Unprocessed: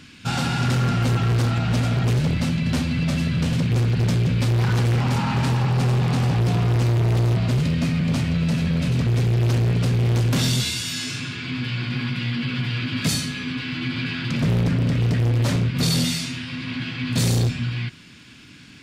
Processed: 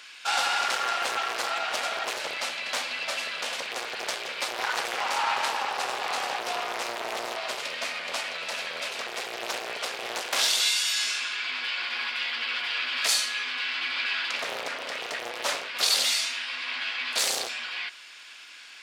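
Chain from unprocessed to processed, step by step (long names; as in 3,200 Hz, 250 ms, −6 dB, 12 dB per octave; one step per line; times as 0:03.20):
high-pass filter 620 Hz 24 dB per octave
highs frequency-modulated by the lows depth 0.19 ms
level +2.5 dB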